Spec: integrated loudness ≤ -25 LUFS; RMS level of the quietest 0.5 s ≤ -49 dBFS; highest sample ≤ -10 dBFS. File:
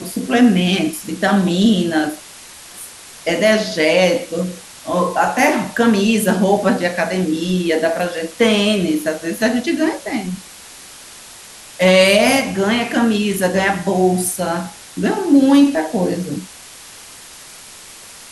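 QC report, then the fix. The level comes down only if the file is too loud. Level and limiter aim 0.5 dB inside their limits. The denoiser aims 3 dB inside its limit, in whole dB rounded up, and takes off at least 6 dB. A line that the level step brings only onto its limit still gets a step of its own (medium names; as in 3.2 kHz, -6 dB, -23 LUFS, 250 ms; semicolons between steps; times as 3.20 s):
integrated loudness -16.0 LUFS: fail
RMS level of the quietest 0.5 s -38 dBFS: fail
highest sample -2.5 dBFS: fail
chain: noise reduction 6 dB, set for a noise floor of -38 dBFS; trim -9.5 dB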